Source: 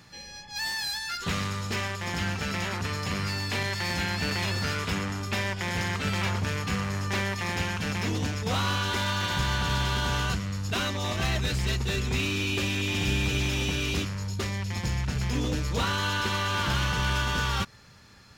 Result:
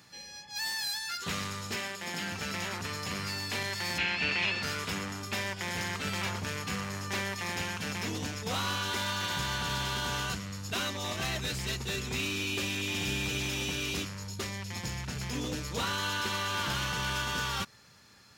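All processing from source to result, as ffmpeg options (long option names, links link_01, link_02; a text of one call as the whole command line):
ffmpeg -i in.wav -filter_complex "[0:a]asettb=1/sr,asplit=3[link_01][link_02][link_03];[link_01]atrim=end=1.754[link_04];[link_02]atrim=start=1.75:end=2.32,asetpts=PTS-STARTPTS,afade=type=in:duration=0.004:curve=qsin,afade=type=out:start_time=0.566:duration=0.004:curve=qsin,highpass=frequency=140:width=0.5412,highpass=frequency=140:width=1.3066,equalizer=frequency=1100:width_type=o:width=0.34:gain=-5,bandreject=frequency=5900:width=18[link_05];[link_03]atrim=start=2.316[link_06];[link_04][link_05]acrossfade=duration=0.004:curve1=hsin:curve2=qsin[link_07];[link_07][link_06]acrossfade=duration=0.004:curve1=qsin:curve2=hsin,asettb=1/sr,asplit=3[link_08][link_09][link_10];[link_08]atrim=end=3.984[link_11];[link_09]atrim=start=3.98:end=4.63,asetpts=PTS-STARTPTS,afade=type=in:duration=0.004:curve=qsin,afade=type=out:start_time=0.646:duration=0.004:curve=qsin,lowpass=4400,equalizer=frequency=2600:width_type=o:width=0.62:gain=11,bandreject=frequency=50:width_type=h:width=6,bandreject=frequency=100:width_type=h:width=6,bandreject=frequency=150:width_type=h:width=6,bandreject=frequency=200:width_type=h:width=6,bandreject=frequency=250:width_type=h:width=6[link_12];[link_10]atrim=start=4.626[link_13];[link_11][link_12]acrossfade=duration=0.004:curve1=hsin:curve2=qsin[link_14];[link_14][link_13]acrossfade=duration=0.004:curve1=qsin:curve2=hsin,highpass=frequency=150:poles=1,highshelf=frequency=5800:gain=6.5,volume=-4.5dB" out.wav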